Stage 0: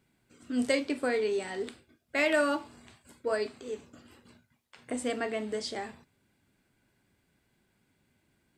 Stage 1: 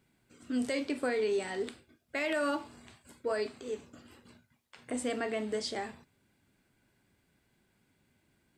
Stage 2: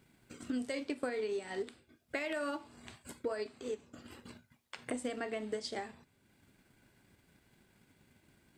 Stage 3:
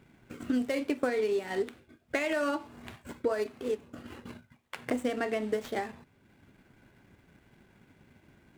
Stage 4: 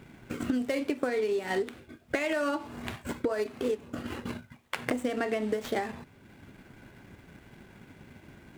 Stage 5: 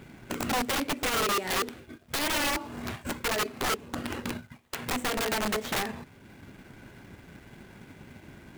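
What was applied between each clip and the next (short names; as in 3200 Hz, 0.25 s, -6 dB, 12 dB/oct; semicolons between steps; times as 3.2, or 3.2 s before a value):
limiter -23.5 dBFS, peak gain reduction 8.5 dB
transient shaper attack +6 dB, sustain -4 dB; compressor 2:1, threshold -48 dBFS, peak gain reduction 13 dB; gain +4.5 dB
median filter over 9 samples; gain +7.5 dB
compressor 6:1, threshold -35 dBFS, peak gain reduction 11 dB; gain +8.5 dB
in parallel at -9 dB: companded quantiser 4-bit; on the sum: wrapped overs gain 23 dB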